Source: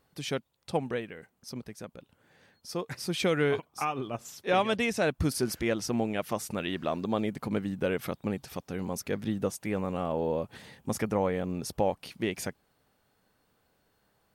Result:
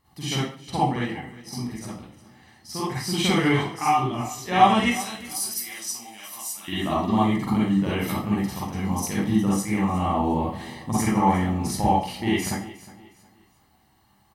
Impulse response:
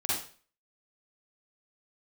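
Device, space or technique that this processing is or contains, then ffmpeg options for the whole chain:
microphone above a desk: -filter_complex "[0:a]asettb=1/sr,asplit=3[a][b][c];[a]atrim=end=4.844[d];[b]atrim=start=4.84:end=6.68,asetpts=PTS-STARTPTS,afade=t=in:d=0.004:c=qsin,afade=t=out:st=1.836:d=0.004:c=qsin,aderivative[e];[c]atrim=start=6.676[f];[d][e]acrossfade=d=0.004:c1=hsin:c2=qsin[g];[g][f]acrossfade=d=0.004:c1=qsin:c2=hsin,aecho=1:1:1:0.64[h];[1:a]atrim=start_sample=2205[i];[h][i]afir=irnorm=-1:irlink=0,aecho=1:1:360|720|1080:0.126|0.0415|0.0137"

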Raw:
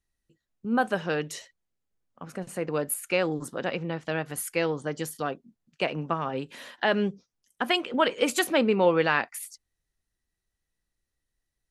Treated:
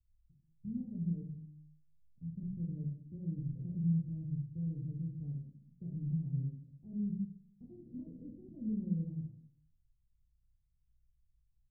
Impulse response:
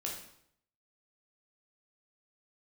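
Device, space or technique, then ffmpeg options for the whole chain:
club heard from the street: -filter_complex "[0:a]alimiter=limit=-16dB:level=0:latency=1:release=91,lowpass=f=130:w=0.5412,lowpass=f=130:w=1.3066[a];[1:a]atrim=start_sample=2205[b];[a][b]afir=irnorm=-1:irlink=0,volume=9.5dB"

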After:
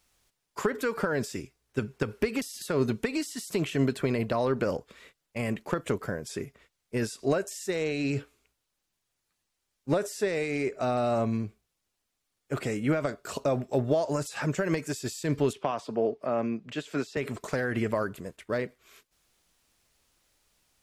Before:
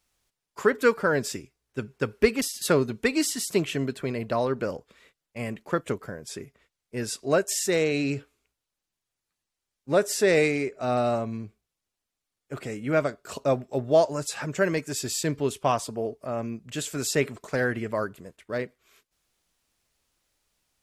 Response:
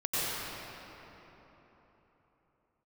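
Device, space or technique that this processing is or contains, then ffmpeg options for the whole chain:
de-esser from a sidechain: -filter_complex "[0:a]asplit=2[a][b];[b]highpass=f=4.9k:p=1,apad=whole_len=918387[c];[a][c]sidechaincompress=threshold=-43dB:ratio=12:attack=4:release=73,asettb=1/sr,asplit=3[d][e][f];[d]atrim=end=15.534[g];[e]atrim=start=15.53:end=17.17,asetpts=PTS-STARTPTS,afade=t=in:d=0.004:c=qsin,afade=t=out:st=1.636:d=0.004:c=qsin,acrossover=split=160 4700:gain=0.2 1 0.141[h][i][j];[h][i][j]amix=inputs=3:normalize=0[k];[f]atrim=start=17.166[l];[g][k]acrossfade=d=0.004:c1=hsin:c2=qsin[m];[m][l]acrossfade=d=0.004:c1=qsin:c2=hsin,volume=4.5dB"

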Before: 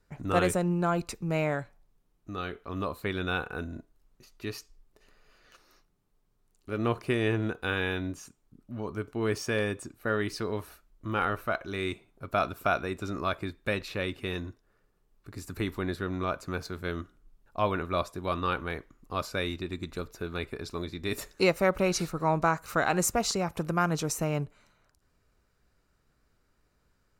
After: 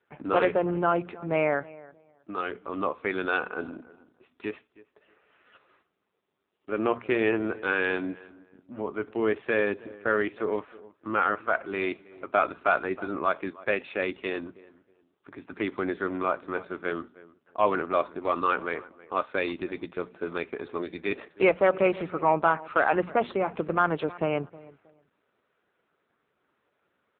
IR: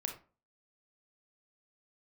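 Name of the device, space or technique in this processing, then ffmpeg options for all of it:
telephone: -filter_complex "[0:a]bandreject=f=60:t=h:w=6,bandreject=f=120:t=h:w=6,bandreject=f=180:t=h:w=6,bandreject=f=240:t=h:w=6,asplit=3[a][b][c];[a]afade=t=out:st=23.37:d=0.02[d];[b]highshelf=f=9.6k:g=4,afade=t=in:st=23.37:d=0.02,afade=t=out:st=24.38:d=0.02[e];[c]afade=t=in:st=24.38:d=0.02[f];[d][e][f]amix=inputs=3:normalize=0,highpass=290,lowpass=3.4k,asplit=2[g][h];[h]adelay=317,lowpass=f=1.5k:p=1,volume=-20dB,asplit=2[i][j];[j]adelay=317,lowpass=f=1.5k:p=1,volume=0.28[k];[g][i][k]amix=inputs=3:normalize=0,asoftclip=type=tanh:threshold=-15.5dB,volume=6.5dB" -ar 8000 -c:a libopencore_amrnb -b:a 5900

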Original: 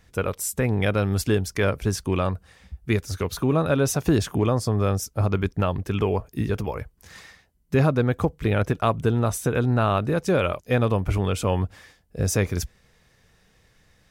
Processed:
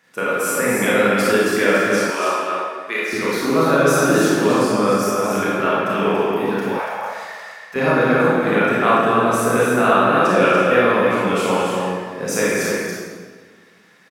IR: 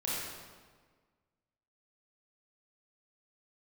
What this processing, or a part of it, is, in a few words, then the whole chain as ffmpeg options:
stadium PA: -filter_complex "[0:a]highpass=f=200:w=0.5412,highpass=f=200:w=1.3066,equalizer=f=1.6k:t=o:w=1.4:g=7,aecho=1:1:166.2|242|285.7:0.282|0.251|0.501[a];[1:a]atrim=start_sample=2205[b];[a][b]afir=irnorm=-1:irlink=0,asettb=1/sr,asplit=3[c][d][e];[c]atrim=end=2.104[f];[d]atrim=start=2.1:end=3.13,asetpts=PTS-STARTPTS,afade=t=in:d=0.004:c=qsin,afade=t=out:st=1.026:d=0.004:c=qsin,highpass=520[g];[e]atrim=start=3.126[h];[f][g]acrossfade=d=0.004:c1=hsin:c2=qsin[i];[i][h]acrossfade=d=0.004:c1=qsin:c2=hsin,asettb=1/sr,asplit=3[j][k][l];[j]atrim=end=6.794[m];[k]atrim=start=6.79:end=7.76,asetpts=PTS-STARTPTS,afade=t=in:d=0.004:c=qsin,afade=t=out:st=0.966:d=0.004:c=qsin,lowshelf=f=480:t=q:w=3:g=-11.5[n];[l]atrim=start=7.756[o];[m][n]acrossfade=d=0.004:c1=hsin:c2=qsin[p];[p][o]acrossfade=d=0.004:c1=qsin:c2=hsin"

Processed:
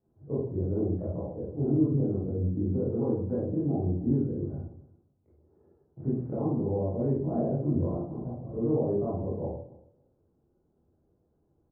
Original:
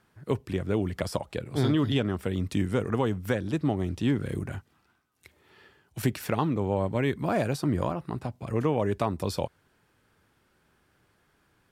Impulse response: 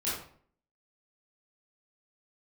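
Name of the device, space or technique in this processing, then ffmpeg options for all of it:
next room: -filter_complex "[0:a]asettb=1/sr,asplit=3[a][b][c];[a]atrim=end=1.234[d];[b]atrim=start=1.23:end=3.01,asetpts=PTS-STARTPTS,afade=t=in:d=0.004:c=qsin,afade=t=out:st=1.776:d=0.004:c=qsin,lowpass=f=1k:p=1[e];[c]atrim=start=3.006[f];[d][e]acrossfade=d=0.004:c1=hsin:c2=qsin[g];[g][f]acrossfade=d=0.004:c1=qsin:c2=hsin,lowpass=f=680:w=0.5412,lowpass=f=680:w=1.3066,aecho=1:1:280|560:0.0891|0.0143[h];[1:a]atrim=start_sample=2205[i];[h][i]afir=irnorm=-1:irlink=0,volume=-7.5dB"

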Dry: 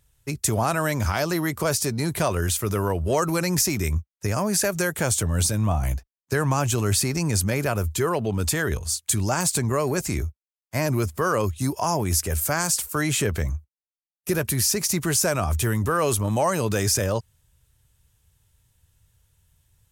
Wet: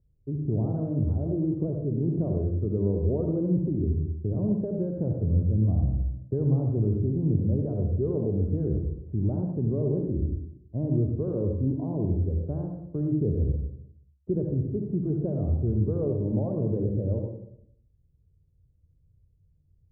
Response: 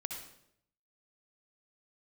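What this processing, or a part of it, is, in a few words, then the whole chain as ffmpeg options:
next room: -filter_complex "[0:a]asettb=1/sr,asplit=3[a][b][c];[a]atrim=end=0.834[d];[b]atrim=start=0.83:end=1.97,asetpts=PTS-STARTPTS,afade=t=in:d=0.004:c=qsin,afade=t=out:st=1.136:d=0.004:c=qsin,deesser=0.95[e];[c]atrim=start=1.966[f];[d][e]acrossfade=d=0.004:c1=hsin:c2=qsin[g];[g][f]acrossfade=d=0.004:c1=qsin:c2=hsin,lowpass=f=450:w=0.5412,lowpass=f=450:w=1.3066[h];[1:a]atrim=start_sample=2205[i];[h][i]afir=irnorm=-1:irlink=0"

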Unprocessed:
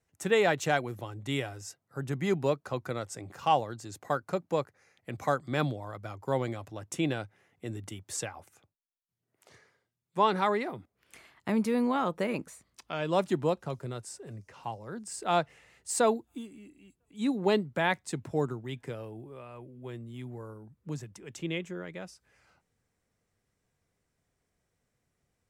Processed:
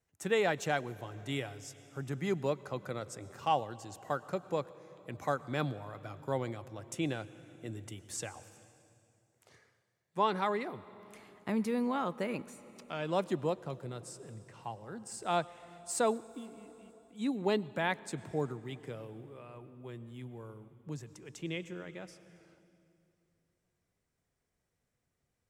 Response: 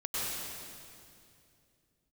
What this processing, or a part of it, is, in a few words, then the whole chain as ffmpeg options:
compressed reverb return: -filter_complex "[0:a]asplit=2[a][b];[1:a]atrim=start_sample=2205[c];[b][c]afir=irnorm=-1:irlink=0,acompressor=threshold=-25dB:ratio=5,volume=-19dB[d];[a][d]amix=inputs=2:normalize=0,volume=-5dB"

